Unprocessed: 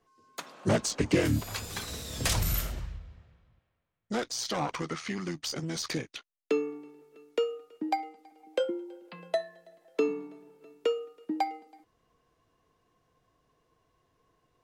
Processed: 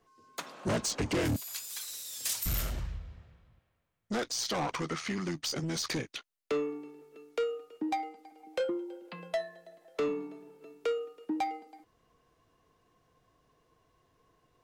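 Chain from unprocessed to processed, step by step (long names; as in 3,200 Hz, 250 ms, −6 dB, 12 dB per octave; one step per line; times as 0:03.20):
0:01.36–0:02.46: first difference
soft clipping −28 dBFS, distortion −9 dB
level +2 dB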